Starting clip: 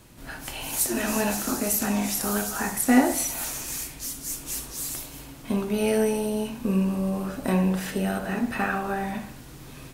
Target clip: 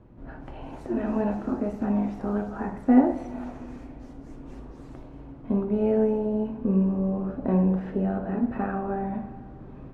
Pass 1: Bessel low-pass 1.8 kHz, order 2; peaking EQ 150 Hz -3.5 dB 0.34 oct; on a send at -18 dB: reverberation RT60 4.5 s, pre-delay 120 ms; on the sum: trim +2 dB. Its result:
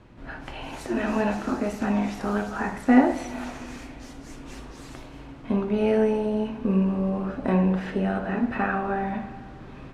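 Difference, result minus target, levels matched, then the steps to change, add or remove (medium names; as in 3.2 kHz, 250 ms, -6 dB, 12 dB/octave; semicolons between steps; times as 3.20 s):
2 kHz band +10.5 dB
change: Bessel low-pass 630 Hz, order 2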